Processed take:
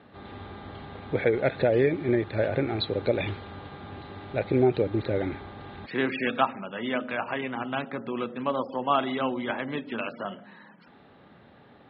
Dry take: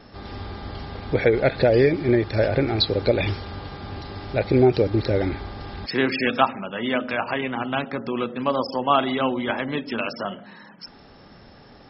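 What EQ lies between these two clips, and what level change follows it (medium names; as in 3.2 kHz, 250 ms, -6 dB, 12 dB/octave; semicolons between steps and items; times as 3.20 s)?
high-pass 99 Hz; elliptic low-pass 3.9 kHz, stop band 40 dB; distance through air 100 m; -4.0 dB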